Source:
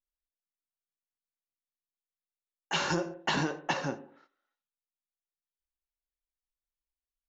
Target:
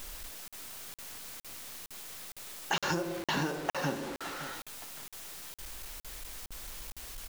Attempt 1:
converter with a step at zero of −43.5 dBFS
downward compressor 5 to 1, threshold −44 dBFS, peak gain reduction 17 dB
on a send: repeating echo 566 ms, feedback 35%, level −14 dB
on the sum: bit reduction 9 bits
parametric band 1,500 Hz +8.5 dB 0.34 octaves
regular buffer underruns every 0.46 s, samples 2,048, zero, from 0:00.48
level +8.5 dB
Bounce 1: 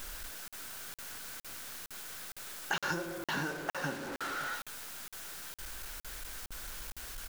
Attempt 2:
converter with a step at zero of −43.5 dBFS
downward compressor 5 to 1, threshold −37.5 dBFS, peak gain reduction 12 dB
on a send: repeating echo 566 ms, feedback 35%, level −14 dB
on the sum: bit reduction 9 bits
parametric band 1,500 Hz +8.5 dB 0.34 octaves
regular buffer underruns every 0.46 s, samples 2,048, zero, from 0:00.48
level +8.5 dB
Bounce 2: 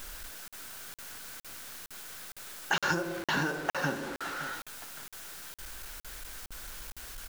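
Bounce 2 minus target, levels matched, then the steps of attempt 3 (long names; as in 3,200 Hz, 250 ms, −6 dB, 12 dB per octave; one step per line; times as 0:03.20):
2,000 Hz band +3.5 dB
converter with a step at zero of −43.5 dBFS
downward compressor 5 to 1, threshold −37.5 dBFS, peak gain reduction 12 dB
on a send: repeating echo 566 ms, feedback 35%, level −14 dB
on the sum: bit reduction 9 bits
regular buffer underruns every 0.46 s, samples 2,048, zero, from 0:00.48
level +8.5 dB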